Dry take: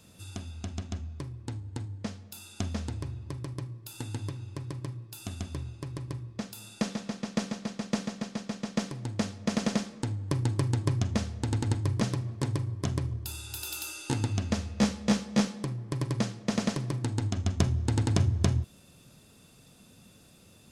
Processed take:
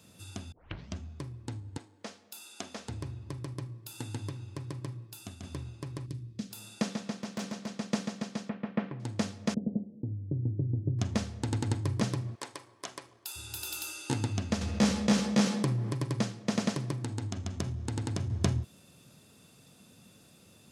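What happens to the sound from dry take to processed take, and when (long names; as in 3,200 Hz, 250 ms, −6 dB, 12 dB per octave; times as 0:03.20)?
0:00.52: tape start 0.44 s
0:01.77–0:02.89: high-pass filter 380 Hz
0:05.03–0:05.43: fade out, to −7.5 dB
0:06.06–0:06.51: drawn EQ curve 260 Hz 0 dB, 890 Hz −17 dB, 3,900 Hz −2 dB
0:07.16–0:07.73: hard clipping −30.5 dBFS
0:08.49–0:09.00: low-pass filter 2,500 Hz 24 dB per octave
0:09.54–0:10.99: Gaussian smoothing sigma 20 samples
0:12.35–0:13.36: high-pass filter 680 Hz
0:14.61–0:15.92: envelope flattener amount 50%
0:16.93–0:18.30: downward compressor 2 to 1, threshold −31 dBFS
whole clip: high-pass filter 90 Hz; level −1 dB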